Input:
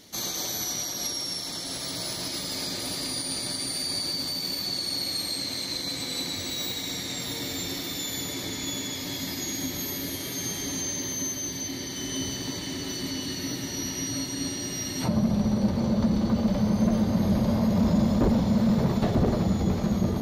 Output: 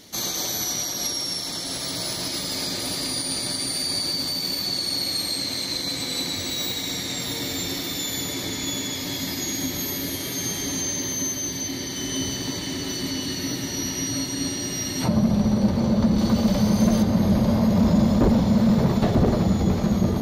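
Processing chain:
0:16.18–0:17.03: high-shelf EQ 3,300 Hz +9 dB
level +4 dB

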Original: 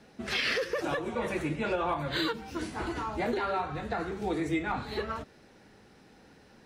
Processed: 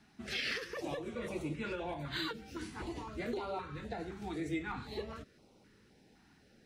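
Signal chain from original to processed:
notch on a step sequencer 3.9 Hz 510–1,700 Hz
level −6 dB

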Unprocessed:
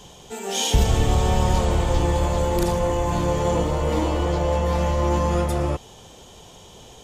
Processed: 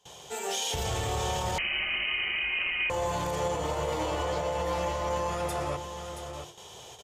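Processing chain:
mains-hum notches 50/100/150/200/250/300/350 Hz
noise gate with hold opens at −35 dBFS
high-pass filter 110 Hz 12 dB per octave
parametric band 230 Hz −13.5 dB 0.96 octaves
brickwall limiter −22 dBFS, peak gain reduction 9.5 dB
on a send: single-tap delay 677 ms −9 dB
0:01.58–0:02.90: on the sum: voice inversion scrambler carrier 3,000 Hz

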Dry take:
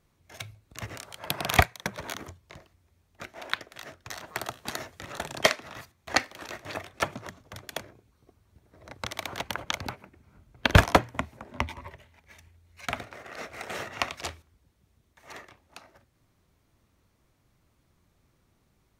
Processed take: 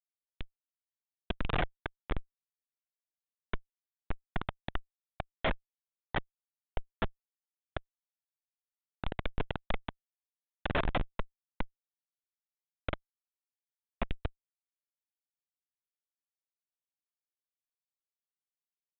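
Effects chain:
high-pass filter 480 Hz 24 dB per octave
spring reverb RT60 3.8 s, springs 42 ms, chirp 75 ms, DRR 14 dB
noise reduction from a noise print of the clip's start 28 dB
comparator with hysteresis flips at −24 dBFS
downsampling to 8,000 Hz
level +8 dB

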